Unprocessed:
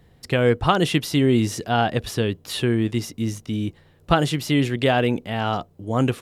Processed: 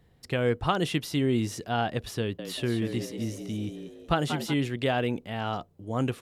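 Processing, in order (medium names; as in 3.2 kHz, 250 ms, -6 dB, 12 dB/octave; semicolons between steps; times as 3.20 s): 2.20–4.54 s: frequency-shifting echo 186 ms, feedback 42%, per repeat +78 Hz, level -8.5 dB; trim -7.5 dB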